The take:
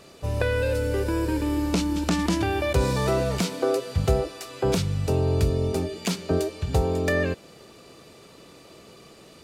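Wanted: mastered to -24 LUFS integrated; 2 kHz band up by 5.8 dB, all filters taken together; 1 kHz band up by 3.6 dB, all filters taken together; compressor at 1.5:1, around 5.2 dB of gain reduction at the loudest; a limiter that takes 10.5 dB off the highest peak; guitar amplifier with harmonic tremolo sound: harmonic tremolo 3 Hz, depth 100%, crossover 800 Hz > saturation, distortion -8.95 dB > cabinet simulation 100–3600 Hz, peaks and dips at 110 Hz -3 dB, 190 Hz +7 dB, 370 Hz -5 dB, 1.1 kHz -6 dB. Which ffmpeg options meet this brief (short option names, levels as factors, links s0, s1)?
-filter_complex "[0:a]equalizer=f=1000:t=o:g=6,equalizer=f=2000:t=o:g=6,acompressor=threshold=0.0316:ratio=1.5,alimiter=limit=0.112:level=0:latency=1,acrossover=split=800[s0][s1];[s0]aeval=exprs='val(0)*(1-1/2+1/2*cos(2*PI*3*n/s))':c=same[s2];[s1]aeval=exprs='val(0)*(1-1/2-1/2*cos(2*PI*3*n/s))':c=same[s3];[s2][s3]amix=inputs=2:normalize=0,asoftclip=threshold=0.0224,highpass=100,equalizer=f=110:t=q:w=4:g=-3,equalizer=f=190:t=q:w=4:g=7,equalizer=f=370:t=q:w=4:g=-5,equalizer=f=1100:t=q:w=4:g=-6,lowpass=f=3600:w=0.5412,lowpass=f=3600:w=1.3066,volume=5.96"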